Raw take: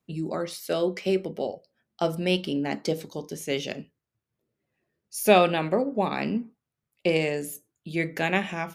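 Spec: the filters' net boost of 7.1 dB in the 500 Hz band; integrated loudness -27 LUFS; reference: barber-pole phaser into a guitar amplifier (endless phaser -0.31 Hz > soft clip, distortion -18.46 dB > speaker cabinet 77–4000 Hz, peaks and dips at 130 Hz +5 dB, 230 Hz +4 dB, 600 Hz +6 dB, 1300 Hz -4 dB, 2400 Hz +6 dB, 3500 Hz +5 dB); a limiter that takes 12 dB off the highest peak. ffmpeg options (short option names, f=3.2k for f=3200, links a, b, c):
-filter_complex "[0:a]equalizer=f=500:t=o:g=5,alimiter=limit=-14.5dB:level=0:latency=1,asplit=2[a][b];[b]afreqshift=-0.31[c];[a][c]amix=inputs=2:normalize=1,asoftclip=threshold=-19.5dB,highpass=77,equalizer=f=130:t=q:w=4:g=5,equalizer=f=230:t=q:w=4:g=4,equalizer=f=600:t=q:w=4:g=6,equalizer=f=1.3k:t=q:w=4:g=-4,equalizer=f=2.4k:t=q:w=4:g=6,equalizer=f=3.5k:t=q:w=4:g=5,lowpass=f=4k:w=0.5412,lowpass=f=4k:w=1.3066,volume=2.5dB"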